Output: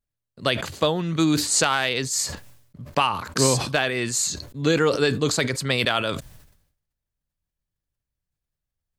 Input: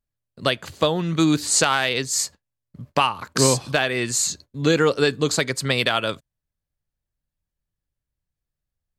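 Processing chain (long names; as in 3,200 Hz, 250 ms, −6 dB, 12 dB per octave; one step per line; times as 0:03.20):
level that may fall only so fast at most 77 dB per second
level −2 dB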